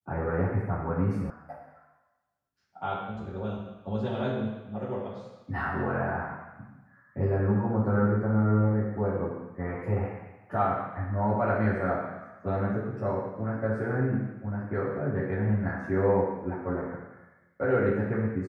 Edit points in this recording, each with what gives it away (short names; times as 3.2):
1.3 sound cut off